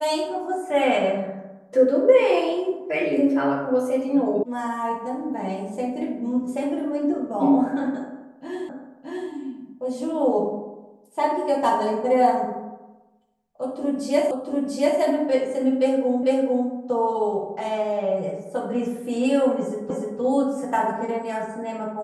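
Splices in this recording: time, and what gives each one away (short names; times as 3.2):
4.43 sound cut off
8.69 repeat of the last 0.62 s
14.31 repeat of the last 0.69 s
16.23 repeat of the last 0.45 s
19.9 repeat of the last 0.3 s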